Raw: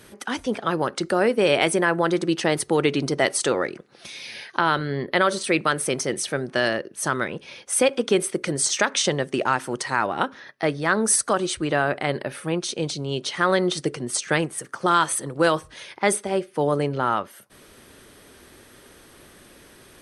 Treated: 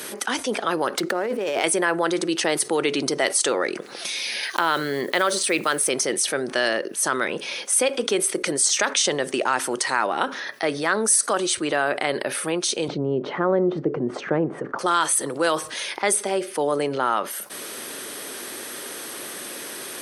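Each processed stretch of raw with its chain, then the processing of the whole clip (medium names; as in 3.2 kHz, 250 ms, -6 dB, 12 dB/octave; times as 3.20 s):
0.98–1.64 s: treble shelf 3 kHz -11.5 dB + compressor with a negative ratio -26 dBFS + sliding maximum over 3 samples
4.43–5.90 s: block-companded coder 7-bit + tape noise reduction on one side only encoder only
12.88–14.79 s: low-pass 1.1 kHz + tilt EQ -4 dB/octave + tape noise reduction on one side only encoder only
whole clip: high-pass 290 Hz 12 dB/octave; treble shelf 5 kHz +7.5 dB; level flattener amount 50%; trim -5 dB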